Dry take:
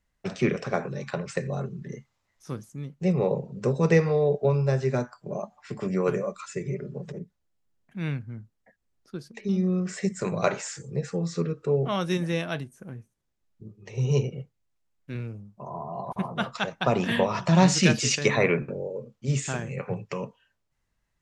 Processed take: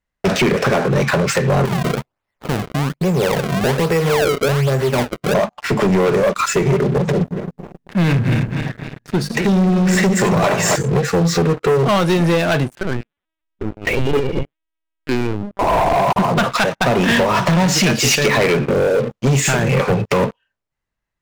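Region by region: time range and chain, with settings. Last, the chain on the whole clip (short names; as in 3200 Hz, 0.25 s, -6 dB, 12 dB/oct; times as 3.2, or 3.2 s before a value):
1.65–5.34 compressor 5:1, threshold -37 dBFS + decimation with a swept rate 29×, swing 160% 1.2 Hz
7.14–10.76 regenerating reverse delay 0.134 s, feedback 67%, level -9.5 dB + notches 50/100/150/200/250 Hz + comb 1.1 ms, depth 31%
12.75–15.96 bell 91 Hz -12.5 dB 0.54 oct + LPC vocoder at 8 kHz pitch kept + mismatched tape noise reduction encoder only
whole clip: tone controls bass -4 dB, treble -6 dB; compressor 8:1, threshold -32 dBFS; sample leveller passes 5; gain +8 dB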